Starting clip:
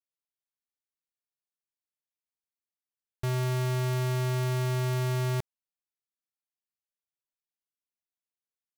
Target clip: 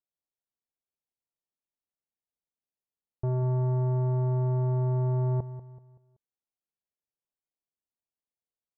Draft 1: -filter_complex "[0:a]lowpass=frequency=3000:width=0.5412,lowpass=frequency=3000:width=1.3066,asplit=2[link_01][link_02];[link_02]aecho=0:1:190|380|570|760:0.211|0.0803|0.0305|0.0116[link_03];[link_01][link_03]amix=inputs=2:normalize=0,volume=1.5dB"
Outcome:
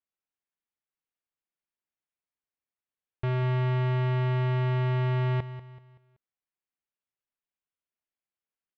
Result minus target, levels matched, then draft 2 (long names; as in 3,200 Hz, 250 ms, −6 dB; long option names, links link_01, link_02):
1,000 Hz band +4.5 dB
-filter_complex "[0:a]lowpass=frequency=880:width=0.5412,lowpass=frequency=880:width=1.3066,asplit=2[link_01][link_02];[link_02]aecho=0:1:190|380|570|760:0.211|0.0803|0.0305|0.0116[link_03];[link_01][link_03]amix=inputs=2:normalize=0,volume=1.5dB"